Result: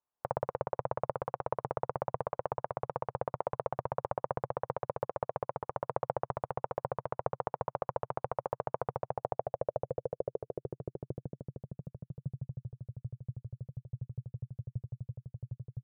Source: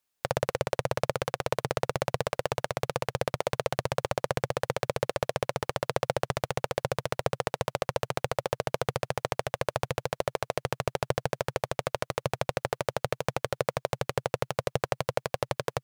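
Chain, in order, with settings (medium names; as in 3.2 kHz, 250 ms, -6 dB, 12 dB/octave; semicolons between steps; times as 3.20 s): low-pass sweep 1 kHz -> 120 Hz, 8.83–12.73 s; 4.78–5.72 s: upward expansion 1.5:1, over -39 dBFS; trim -8.5 dB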